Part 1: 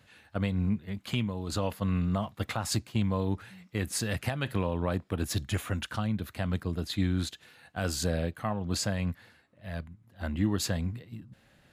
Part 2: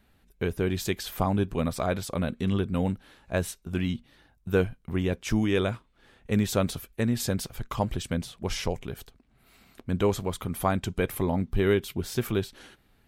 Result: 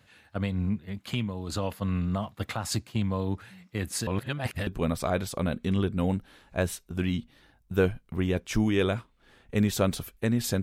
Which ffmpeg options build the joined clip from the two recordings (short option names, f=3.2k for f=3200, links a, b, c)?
-filter_complex "[0:a]apad=whole_dur=10.62,atrim=end=10.62,asplit=2[a][b];[a]atrim=end=4.072[c];[b]atrim=start=4.068:end=4.672,asetpts=PTS-STARTPTS,areverse[d];[1:a]atrim=start=1.428:end=7.38[e];[c][d]acrossfade=d=0.004:c1=hsin:c2=hsin[f];[f][e]acrossfade=d=0.004:c1=hsin:c2=hsin"